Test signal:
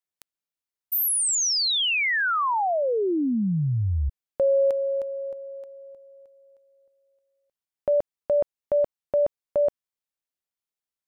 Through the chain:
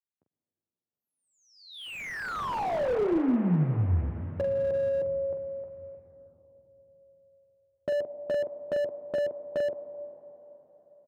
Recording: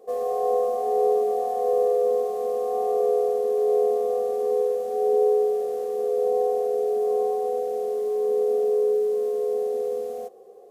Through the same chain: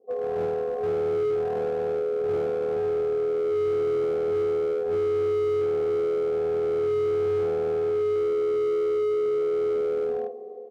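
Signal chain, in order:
low-pass filter 1,100 Hz 6 dB per octave
low-pass that shuts in the quiet parts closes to 440 Hz, open at −23 dBFS
high-pass filter 95 Hz 24 dB per octave
dynamic equaliser 380 Hz, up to +7 dB, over −35 dBFS, Q 1.1
automatic gain control gain up to 11 dB
brickwall limiter −8.5 dBFS
downward compressor 16 to 1, threshold −17 dBFS
on a send: ambience of single reflections 12 ms −9 dB, 45 ms −7 dB
on the sum: dense smooth reverb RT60 4.4 s, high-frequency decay 1×, pre-delay 85 ms, DRR 11.5 dB
slew-rate limiting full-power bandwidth 68 Hz
level −7 dB

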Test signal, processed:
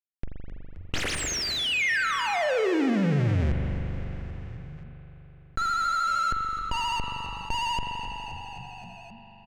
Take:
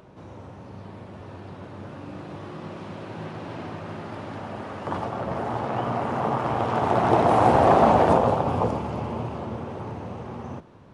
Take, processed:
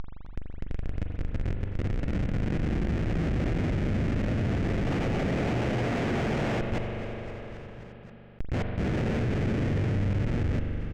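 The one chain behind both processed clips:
stylus tracing distortion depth 0.021 ms
high-pass filter 44 Hz 6 dB per octave
gate with flip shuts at −12 dBFS, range −34 dB
upward compression, threshold −43 dBFS
comparator with hysteresis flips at −32.5 dBFS
octave-band graphic EQ 1,000/2,000/4,000 Hz −11/+3/−7 dB
pitch vibrato 13 Hz 55 cents
high-frequency loss of the air 150 metres
echo with shifted repeats 263 ms, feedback 56%, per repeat −47 Hz, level −18 dB
spring reverb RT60 2.2 s, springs 41 ms, chirp 45 ms, DRR 6.5 dB
envelope flattener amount 50%
level +4.5 dB

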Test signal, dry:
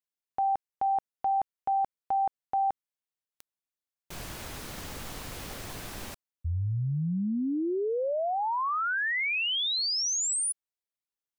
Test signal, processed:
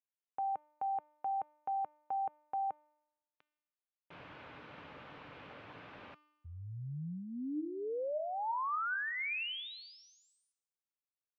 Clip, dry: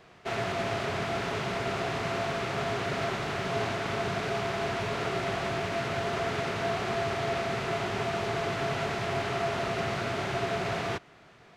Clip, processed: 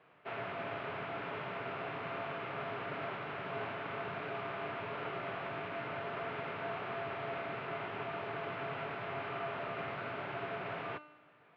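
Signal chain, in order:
loudspeaker in its box 170–2,700 Hz, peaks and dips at 210 Hz −8 dB, 360 Hz −7 dB, 700 Hz −4 dB, 1,900 Hz −4 dB
tuned comb filter 300 Hz, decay 0.93 s, mix 70%
level +4 dB

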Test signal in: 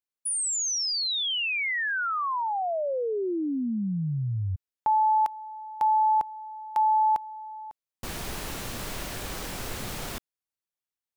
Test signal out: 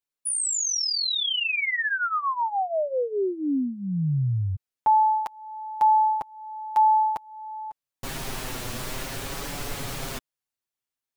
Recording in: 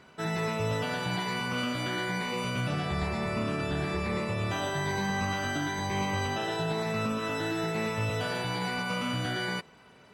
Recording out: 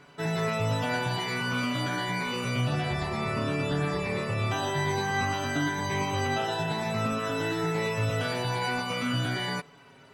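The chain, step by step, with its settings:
flanger 0.52 Hz, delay 6.9 ms, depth 1.2 ms, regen +1%
level +5 dB

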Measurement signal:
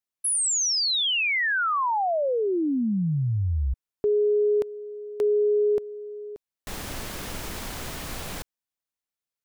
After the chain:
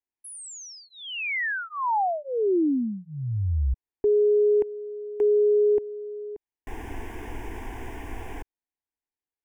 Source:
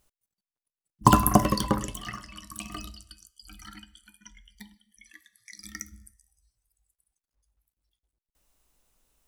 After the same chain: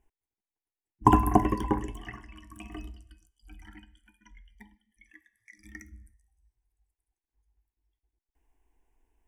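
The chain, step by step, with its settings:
low-pass filter 1,100 Hz 6 dB per octave
phaser with its sweep stopped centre 850 Hz, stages 8
level +3.5 dB

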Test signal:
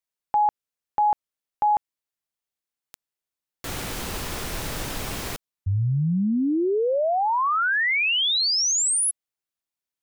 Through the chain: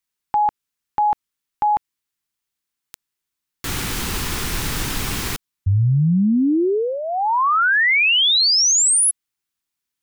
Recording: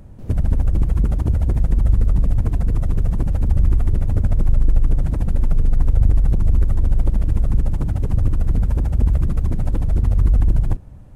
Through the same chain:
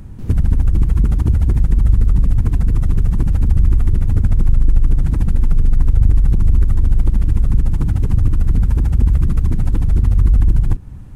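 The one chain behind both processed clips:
parametric band 600 Hz −11.5 dB 0.73 octaves
in parallel at +2.5 dB: downward compressor, threshold −21 dBFS

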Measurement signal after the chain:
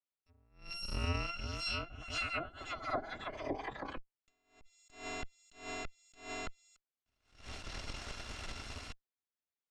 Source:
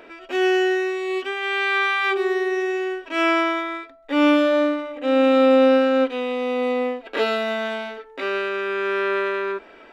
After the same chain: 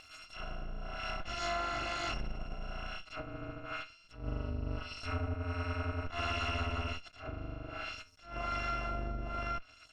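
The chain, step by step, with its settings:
samples in bit-reversed order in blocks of 256 samples
brickwall limiter −16 dBFS
harmonic generator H 3 −36 dB, 4 −16 dB, 7 −21 dB, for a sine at −16 dBFS
high-frequency loss of the air 130 metres
treble cut that deepens with the level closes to 380 Hz, closed at −27.5 dBFS
level that may rise only so fast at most 130 dB per second
level +5.5 dB

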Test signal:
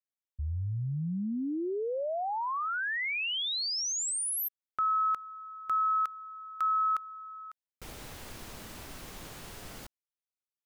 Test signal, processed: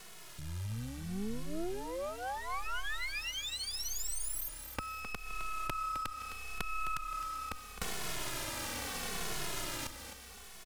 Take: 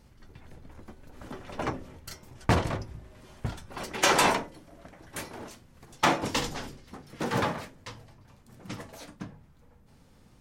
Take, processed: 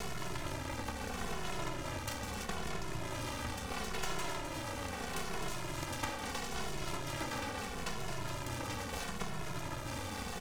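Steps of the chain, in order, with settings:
compressor on every frequency bin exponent 0.4
downward compressor 10 to 1, threshold −30 dBFS
half-wave rectification
echo with shifted repeats 260 ms, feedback 32%, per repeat −33 Hz, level −9 dB
barber-pole flanger 2.3 ms −0.76 Hz
level +1 dB

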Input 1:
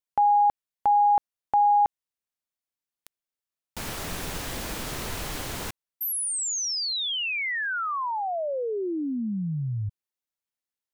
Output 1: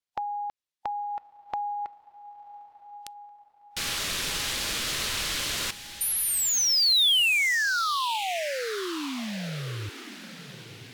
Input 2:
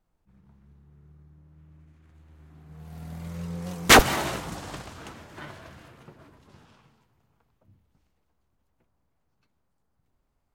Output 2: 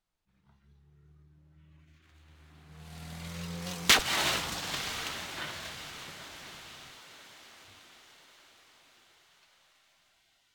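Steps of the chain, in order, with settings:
tilt shelving filter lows −6 dB, about 1,100 Hz
downward compressor 5 to 1, threshold −23 dBFS
on a send: feedback delay with all-pass diffusion 1,010 ms, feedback 50%, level −12.5 dB
on the sum: noise reduction from a noise print of the clip's start 8 dB
parametric band 3,700 Hz +5.5 dB 1.4 octaves
linearly interpolated sample-rate reduction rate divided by 2×

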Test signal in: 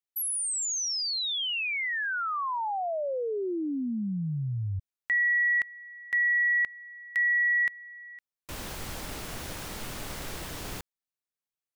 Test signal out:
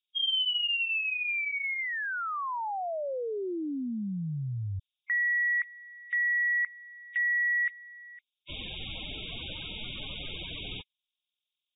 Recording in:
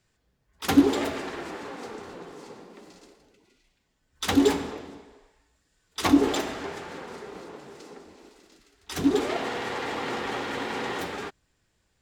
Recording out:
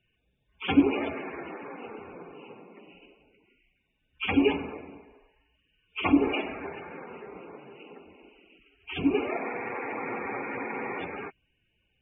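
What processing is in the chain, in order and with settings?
hearing-aid frequency compression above 2,100 Hz 4 to 1
spectral peaks only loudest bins 64
level −2.5 dB

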